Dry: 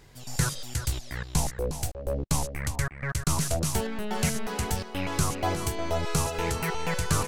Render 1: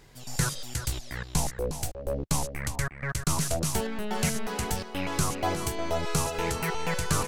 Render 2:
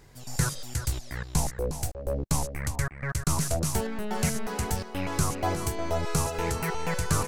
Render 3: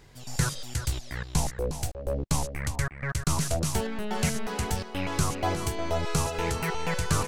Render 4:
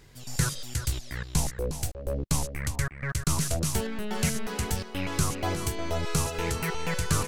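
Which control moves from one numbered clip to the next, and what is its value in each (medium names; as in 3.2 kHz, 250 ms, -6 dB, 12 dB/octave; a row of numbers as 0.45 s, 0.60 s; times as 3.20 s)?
peaking EQ, frequency: 82 Hz, 3.2 kHz, 15 kHz, 780 Hz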